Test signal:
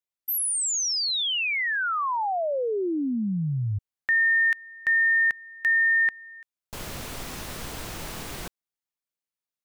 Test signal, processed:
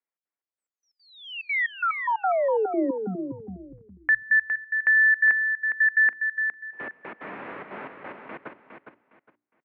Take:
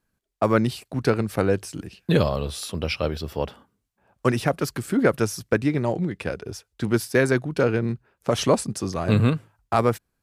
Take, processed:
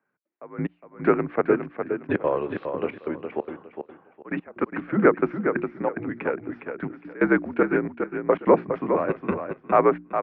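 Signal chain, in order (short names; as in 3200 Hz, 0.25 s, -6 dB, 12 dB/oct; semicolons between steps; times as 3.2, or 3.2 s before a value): notches 60/120/180/240/300/360/420 Hz; step gate "xx.xx..x..x.xxx" 181 bpm -24 dB; on a send: feedback echo 0.41 s, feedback 24%, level -7 dB; on the sum: mistuned SSB -65 Hz 290–2300 Hz; gain +3.5 dB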